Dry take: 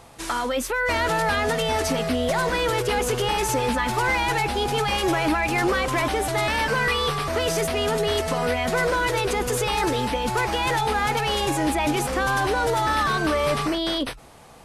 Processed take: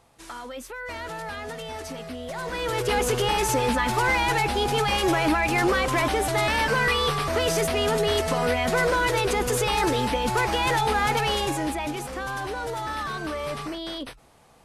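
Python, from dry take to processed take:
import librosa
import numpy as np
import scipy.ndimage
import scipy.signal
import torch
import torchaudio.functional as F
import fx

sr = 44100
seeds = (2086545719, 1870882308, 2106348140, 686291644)

y = fx.gain(x, sr, db=fx.line((2.26, -12.0), (2.93, 0.0), (11.25, 0.0), (11.99, -8.5)))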